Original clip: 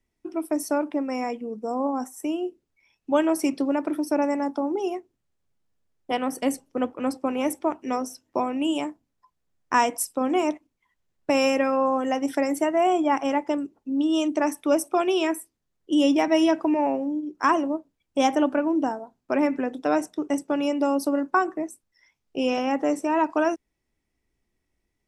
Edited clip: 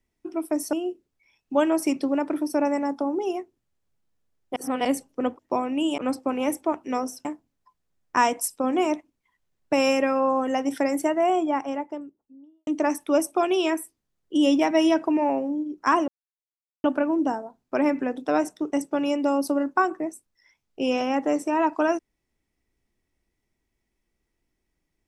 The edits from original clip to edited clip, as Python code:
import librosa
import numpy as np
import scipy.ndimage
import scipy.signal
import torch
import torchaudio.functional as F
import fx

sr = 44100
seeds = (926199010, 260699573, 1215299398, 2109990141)

y = fx.studio_fade_out(x, sr, start_s=12.55, length_s=1.69)
y = fx.edit(y, sr, fx.cut(start_s=0.73, length_s=1.57),
    fx.reverse_span(start_s=6.13, length_s=0.29),
    fx.move(start_s=8.23, length_s=0.59, to_s=6.96),
    fx.silence(start_s=17.65, length_s=0.76), tone=tone)